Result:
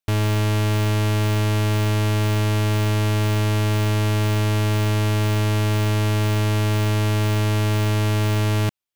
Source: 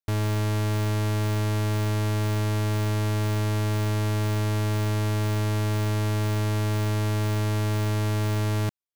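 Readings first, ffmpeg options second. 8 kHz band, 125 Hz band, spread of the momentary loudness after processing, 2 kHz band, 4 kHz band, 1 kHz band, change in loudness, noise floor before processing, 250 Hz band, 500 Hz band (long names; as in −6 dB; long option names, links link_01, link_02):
+5.0 dB, +5.0 dB, 0 LU, +6.5 dB, +7.5 dB, +5.0 dB, +5.0 dB, −24 dBFS, +5.0 dB, +5.0 dB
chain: -af "equalizer=frequency=2800:width_type=o:width=0.64:gain=4.5,volume=5dB"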